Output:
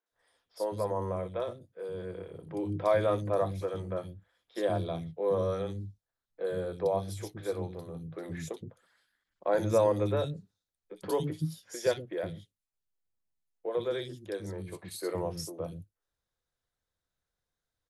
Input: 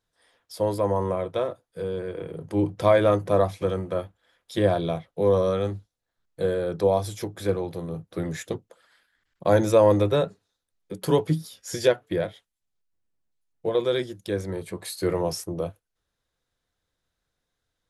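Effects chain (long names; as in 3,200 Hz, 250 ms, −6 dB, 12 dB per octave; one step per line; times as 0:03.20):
three-band delay without the direct sound mids, highs, lows 60/120 ms, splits 280/2,800 Hz
level −7 dB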